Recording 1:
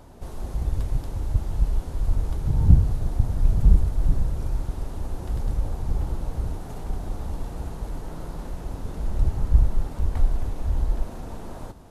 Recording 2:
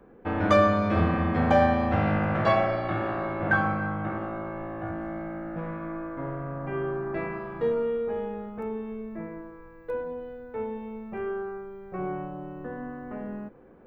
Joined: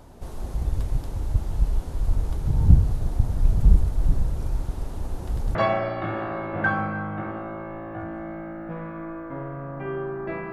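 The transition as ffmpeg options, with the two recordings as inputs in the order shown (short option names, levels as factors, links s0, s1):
-filter_complex "[0:a]apad=whole_dur=10.52,atrim=end=10.52,atrim=end=5.552[s0];[1:a]atrim=start=2.418:end=7.39[s1];[s0][s1]acrossfade=d=0.004:c1=hsin:c2=hsin"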